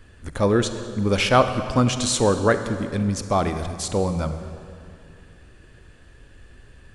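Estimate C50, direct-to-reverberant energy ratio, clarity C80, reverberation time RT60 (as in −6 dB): 9.5 dB, 9.0 dB, 10.5 dB, 2.4 s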